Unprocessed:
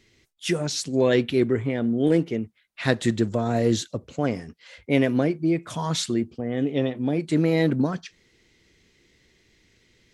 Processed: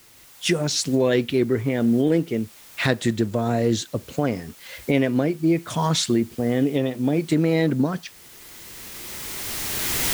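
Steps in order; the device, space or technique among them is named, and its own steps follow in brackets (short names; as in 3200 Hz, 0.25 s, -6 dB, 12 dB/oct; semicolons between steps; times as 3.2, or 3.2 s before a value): cheap recorder with automatic gain (white noise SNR 28 dB; recorder AGC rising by 13 dB/s)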